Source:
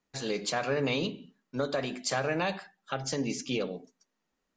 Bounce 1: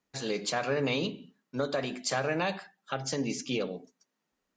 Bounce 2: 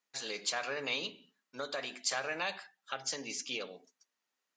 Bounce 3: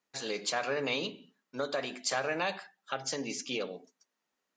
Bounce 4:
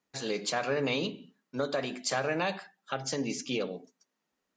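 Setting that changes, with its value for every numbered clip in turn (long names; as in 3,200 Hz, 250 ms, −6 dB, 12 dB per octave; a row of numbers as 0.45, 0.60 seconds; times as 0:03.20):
high-pass filter, corner frequency: 44, 1,500, 510, 150 Hertz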